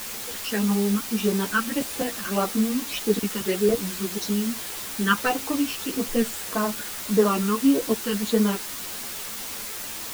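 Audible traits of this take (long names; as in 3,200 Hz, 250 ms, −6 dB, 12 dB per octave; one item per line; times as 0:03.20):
phaser sweep stages 12, 1.7 Hz, lowest notch 640–2,700 Hz
a quantiser's noise floor 6 bits, dither triangular
a shimmering, thickened sound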